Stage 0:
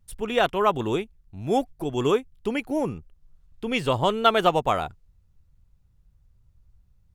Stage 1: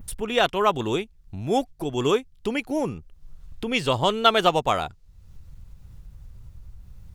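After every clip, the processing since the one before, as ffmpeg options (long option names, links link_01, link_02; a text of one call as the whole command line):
ffmpeg -i in.wav -af "adynamicequalizer=threshold=0.00794:dfrequency=5000:dqfactor=0.73:tfrequency=5000:tqfactor=0.73:attack=5:release=100:ratio=0.375:range=3.5:mode=boostabove:tftype=bell,acompressor=mode=upward:threshold=-27dB:ratio=2.5" out.wav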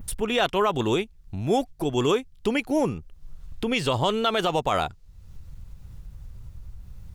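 ffmpeg -i in.wav -af "alimiter=limit=-15dB:level=0:latency=1:release=47,volume=2.5dB" out.wav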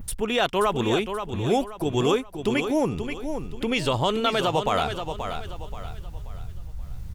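ffmpeg -i in.wav -af "areverse,acompressor=mode=upward:threshold=-26dB:ratio=2.5,areverse,aecho=1:1:530|1060|1590|2120:0.398|0.143|0.0516|0.0186" out.wav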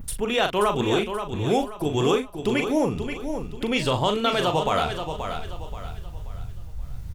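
ffmpeg -i in.wav -filter_complex "[0:a]asplit=2[link_01][link_02];[link_02]adelay=39,volume=-7.5dB[link_03];[link_01][link_03]amix=inputs=2:normalize=0" out.wav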